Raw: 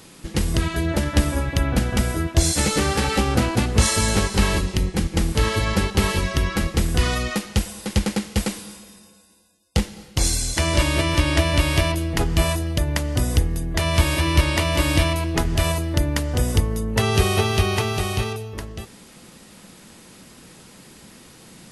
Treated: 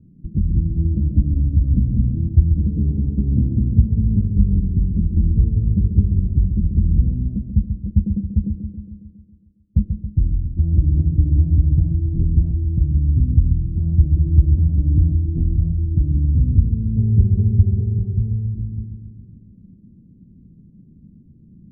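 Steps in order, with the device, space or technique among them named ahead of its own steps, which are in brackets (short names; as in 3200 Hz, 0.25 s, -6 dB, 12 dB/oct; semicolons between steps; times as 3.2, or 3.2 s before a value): spectral gate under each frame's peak -20 dB strong; the neighbour's flat through the wall (LPF 230 Hz 24 dB/oct; bell 86 Hz +3 dB 0.86 oct); analogue delay 0.137 s, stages 2048, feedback 60%, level -7 dB; gain +3 dB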